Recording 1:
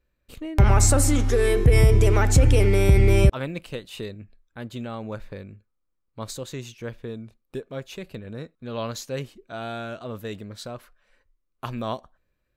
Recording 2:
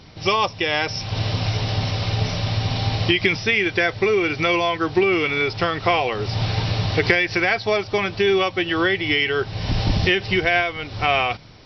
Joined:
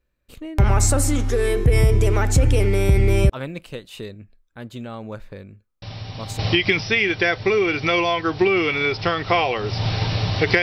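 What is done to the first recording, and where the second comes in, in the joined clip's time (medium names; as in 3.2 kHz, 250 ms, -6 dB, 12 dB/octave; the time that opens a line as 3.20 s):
recording 1
5.82 s: add recording 2 from 2.38 s 0.57 s -11 dB
6.39 s: go over to recording 2 from 2.95 s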